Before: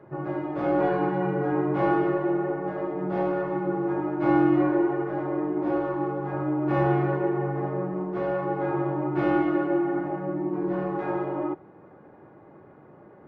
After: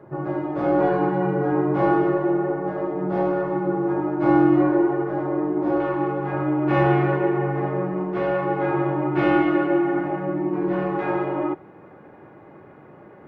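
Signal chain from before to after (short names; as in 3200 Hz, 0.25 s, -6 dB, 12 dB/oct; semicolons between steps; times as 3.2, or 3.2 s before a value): bell 2600 Hz -3.5 dB 1.3 oct, from 5.8 s +6.5 dB; gain +4 dB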